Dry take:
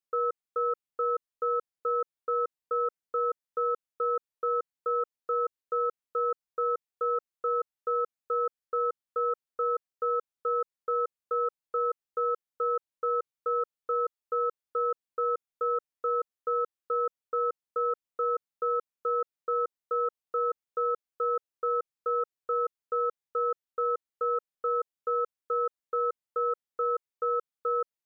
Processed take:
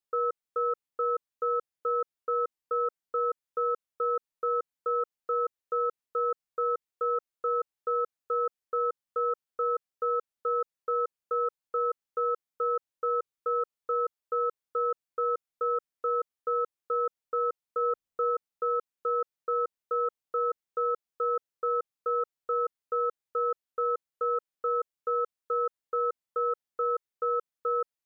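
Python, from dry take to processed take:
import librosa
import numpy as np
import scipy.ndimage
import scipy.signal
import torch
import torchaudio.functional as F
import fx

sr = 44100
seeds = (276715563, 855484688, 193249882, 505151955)

y = fx.low_shelf(x, sr, hz=200.0, db=9.5, at=(17.81, 18.3), fade=0.02)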